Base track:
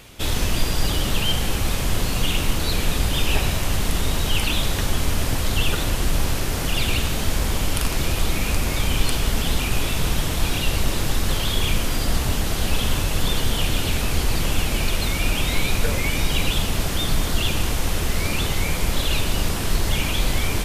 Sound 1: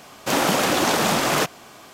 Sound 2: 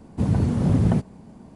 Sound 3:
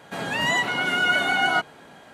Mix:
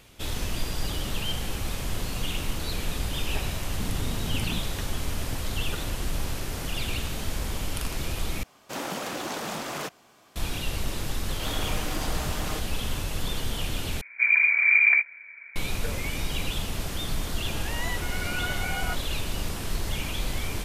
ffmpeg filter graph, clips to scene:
ffmpeg -i bed.wav -i cue0.wav -i cue1.wav -i cue2.wav -filter_complex "[2:a]asplit=2[link_01][link_02];[1:a]asplit=2[link_03][link_04];[0:a]volume=-8.5dB[link_05];[link_04]aecho=1:1:6.5:0.52[link_06];[link_02]lowpass=frequency=2100:width_type=q:width=0.5098,lowpass=frequency=2100:width_type=q:width=0.6013,lowpass=frequency=2100:width_type=q:width=0.9,lowpass=frequency=2100:width_type=q:width=2.563,afreqshift=-2500[link_07];[link_05]asplit=3[link_08][link_09][link_10];[link_08]atrim=end=8.434[link_11];[link_03]atrim=end=1.93,asetpts=PTS-STARTPTS,volume=-13dB[link_12];[link_09]atrim=start=10.356:end=14.014[link_13];[link_07]atrim=end=1.55,asetpts=PTS-STARTPTS,volume=-0.5dB[link_14];[link_10]atrim=start=15.556[link_15];[link_01]atrim=end=1.55,asetpts=PTS-STARTPTS,volume=-14dB,afade=type=in:duration=0.004:curve=hsin,afade=type=out:start_time=1.546:duration=0.004:curve=hsin,adelay=3600[link_16];[link_06]atrim=end=1.93,asetpts=PTS-STARTPTS,volume=-16.5dB,afade=type=in:duration=0.004:curve=hsin,afade=type=out:start_time=1.926:duration=0.004:curve=hsin,adelay=491274S[link_17];[3:a]atrim=end=2.13,asetpts=PTS-STARTPTS,volume=-12dB,afade=type=in:duration=0.004:curve=hsin,afade=type=out:start_time=2.126:duration=0.004:curve=hsin,adelay=17340[link_18];[link_11][link_12]acrossfade=duration=0.004:curve1=hsin:curve2=hsin[link_19];[link_19][link_13]acrossfade=duration=0.004:curve1=hsin:curve2=hsin[link_20];[link_20][link_14]acrossfade=duration=0.004:curve1=hsin:curve2=hsin[link_21];[link_21][link_15]acrossfade=duration=0.004:curve1=hsin:curve2=hsin[link_22];[link_22][link_16][link_17][link_18]amix=inputs=4:normalize=0" out.wav

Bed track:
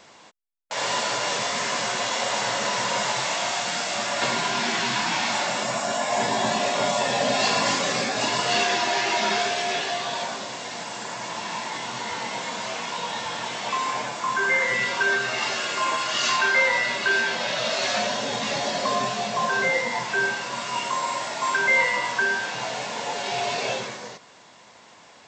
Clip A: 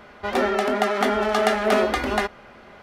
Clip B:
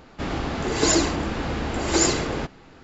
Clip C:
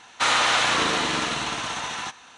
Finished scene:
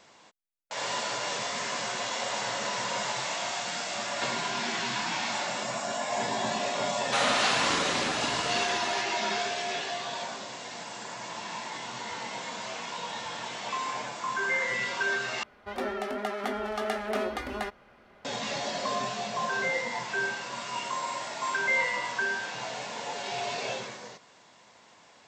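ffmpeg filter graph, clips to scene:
ffmpeg -i bed.wav -i cue0.wav -i cue1.wav -i cue2.wav -filter_complex "[0:a]volume=-6.5dB,asplit=2[link_01][link_02];[link_01]atrim=end=15.434[link_03];[1:a]atrim=end=2.82,asetpts=PTS-STARTPTS,volume=-11dB[link_04];[link_02]atrim=start=18.246[link_05];[3:a]atrim=end=2.37,asetpts=PTS-STARTPTS,volume=-7dB,afade=type=in:duration=0.004:curve=hsin,afade=type=out:start_time=2.366:duration=0.004:curve=hsin,adelay=6920[link_06];[link_03][link_04]acrossfade=duration=0.004:curve1=hsin:curve2=hsin[link_07];[link_07][link_05]acrossfade=duration=0.004:curve1=hsin:curve2=hsin[link_08];[link_08][link_06]amix=inputs=2:normalize=0" out.wav

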